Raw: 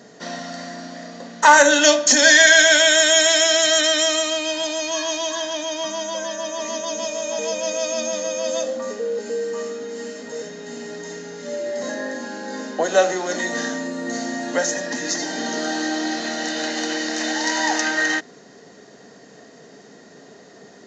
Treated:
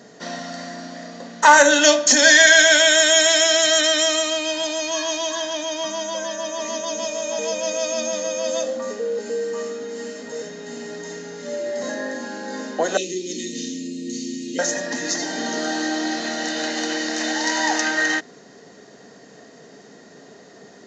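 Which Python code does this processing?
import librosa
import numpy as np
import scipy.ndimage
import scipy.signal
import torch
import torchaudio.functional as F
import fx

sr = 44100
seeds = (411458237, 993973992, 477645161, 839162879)

y = fx.ellip_bandstop(x, sr, low_hz=400.0, high_hz=2500.0, order=3, stop_db=40, at=(12.97, 14.59))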